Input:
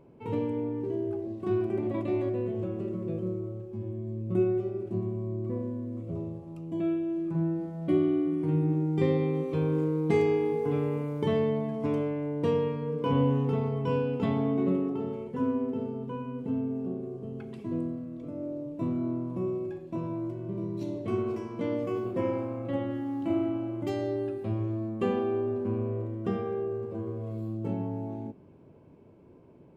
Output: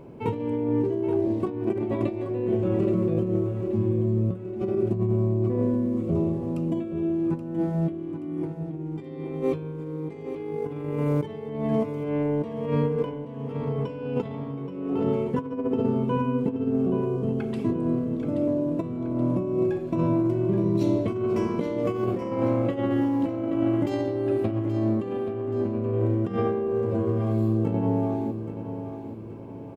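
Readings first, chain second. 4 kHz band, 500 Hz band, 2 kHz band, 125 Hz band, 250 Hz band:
can't be measured, +3.5 dB, +1.0 dB, +4.5 dB, +4.5 dB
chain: compressor whose output falls as the input rises −33 dBFS, ratio −0.5
on a send: repeating echo 827 ms, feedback 44%, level −10 dB
on the sum: level +7.5 dB

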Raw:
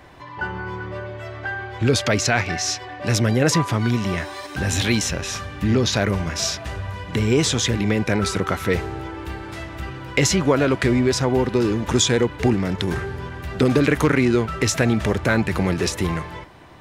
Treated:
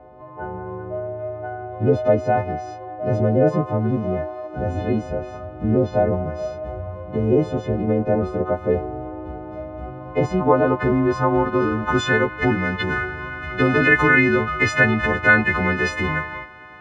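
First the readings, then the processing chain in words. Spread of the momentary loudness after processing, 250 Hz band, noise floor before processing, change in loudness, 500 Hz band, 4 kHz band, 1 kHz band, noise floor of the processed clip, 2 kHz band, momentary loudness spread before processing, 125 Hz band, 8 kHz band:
16 LU, −1.0 dB, −36 dBFS, +0.5 dB, +2.0 dB, −11.0 dB, +3.5 dB, −37 dBFS, +5.5 dB, 13 LU, −2.0 dB, below −15 dB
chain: every partial snapped to a pitch grid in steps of 3 semitones
low-pass filter sweep 630 Hz → 1,800 Hz, 0:09.66–0:12.62
level −1 dB

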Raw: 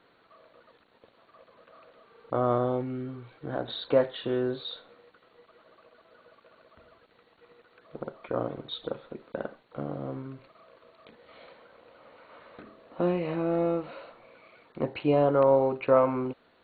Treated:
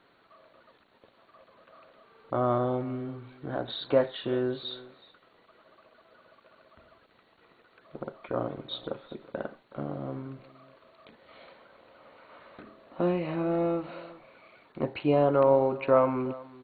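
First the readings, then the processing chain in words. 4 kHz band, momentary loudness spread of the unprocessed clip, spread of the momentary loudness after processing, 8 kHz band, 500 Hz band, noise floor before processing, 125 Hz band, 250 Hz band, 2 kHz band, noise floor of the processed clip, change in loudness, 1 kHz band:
0.0 dB, 17 LU, 18 LU, can't be measured, −0.5 dB, −64 dBFS, 0.0 dB, 0.0 dB, 0.0 dB, −64 dBFS, −0.5 dB, 0.0 dB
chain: notch filter 480 Hz, Q 12
single-tap delay 372 ms −20 dB

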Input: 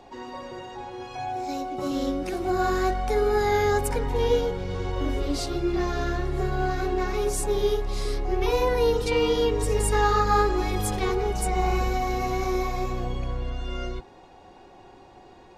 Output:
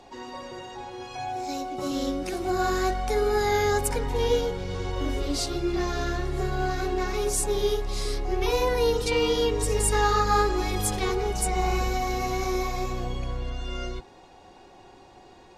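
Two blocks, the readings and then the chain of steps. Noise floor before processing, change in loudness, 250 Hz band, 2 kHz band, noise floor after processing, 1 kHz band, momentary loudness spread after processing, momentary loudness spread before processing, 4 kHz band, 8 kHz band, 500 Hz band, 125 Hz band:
−50 dBFS, −1.0 dB, −1.5 dB, 0.0 dB, −51 dBFS, −1.0 dB, 11 LU, 11 LU, +2.5 dB, +4.5 dB, −1.5 dB, −1.5 dB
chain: parametric band 7,600 Hz +6 dB 2.5 octaves
level −1.5 dB

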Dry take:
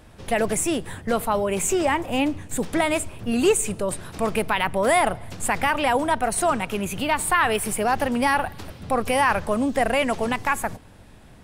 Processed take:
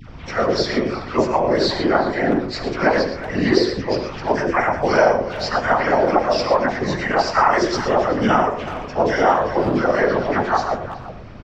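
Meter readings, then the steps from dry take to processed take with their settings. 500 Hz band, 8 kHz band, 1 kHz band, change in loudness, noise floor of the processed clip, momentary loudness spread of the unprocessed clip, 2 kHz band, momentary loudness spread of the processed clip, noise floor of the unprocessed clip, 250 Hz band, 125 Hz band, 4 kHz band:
+6.0 dB, −11.5 dB, +4.0 dB, +4.0 dB, −34 dBFS, 7 LU, +2.5 dB, 7 LU, −47 dBFS, +4.0 dB, +6.0 dB, +4.0 dB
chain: partials spread apart or drawn together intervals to 84%
low-pass filter 3,400 Hz 12 dB per octave
low-shelf EQ 160 Hz −10.5 dB
notch filter 1,700 Hz, Q 29
in parallel at +2.5 dB: downward compressor 5 to 1, threshold −36 dBFS, peak gain reduction 17 dB
on the sum: all-pass dispersion lows, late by 102 ms, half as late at 900 Hz
mains hum 50 Hz, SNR 18 dB
random phases in short frames
far-end echo of a speakerphone 370 ms, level −13 dB
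reverb whose tail is shaped and stops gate 140 ms rising, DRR 8 dB
level +4.5 dB

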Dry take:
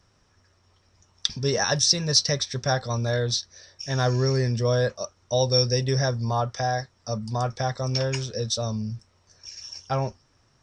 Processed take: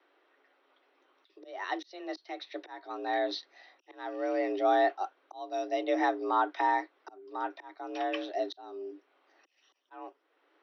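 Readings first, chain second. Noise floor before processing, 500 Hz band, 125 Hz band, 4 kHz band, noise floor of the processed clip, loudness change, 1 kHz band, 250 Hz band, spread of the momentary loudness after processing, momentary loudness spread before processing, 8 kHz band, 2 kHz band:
−64 dBFS, −6.5 dB, below −40 dB, −19.0 dB, −73 dBFS, −8.0 dB, −0.5 dB, −5.5 dB, 18 LU, 13 LU, below −30 dB, −5.0 dB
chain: volume swells 658 ms
single-sideband voice off tune +180 Hz 160–3,500 Hz
level −1 dB

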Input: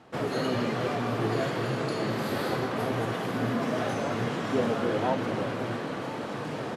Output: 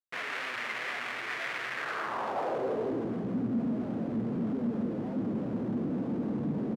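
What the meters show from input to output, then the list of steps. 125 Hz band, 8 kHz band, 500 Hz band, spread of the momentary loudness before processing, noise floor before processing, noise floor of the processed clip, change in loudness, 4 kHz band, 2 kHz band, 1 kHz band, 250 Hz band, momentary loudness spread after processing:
−6.0 dB, can't be measured, −7.0 dB, 6 LU, −35 dBFS, −38 dBFS, −3.5 dB, −6.0 dB, −0.5 dB, −6.0 dB, −0.5 dB, 3 LU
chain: single-tap delay 179 ms −15 dB
comparator with hysteresis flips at −40 dBFS
band-pass filter sweep 2,000 Hz → 220 Hz, 0:01.74–0:03.21
level +4.5 dB

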